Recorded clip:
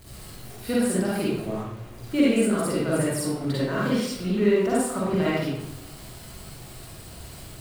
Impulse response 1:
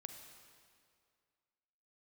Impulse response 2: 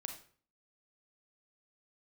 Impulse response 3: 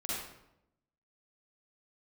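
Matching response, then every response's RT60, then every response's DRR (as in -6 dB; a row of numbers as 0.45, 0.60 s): 3; 2.2, 0.45, 0.85 s; 5.5, 4.5, -8.0 dB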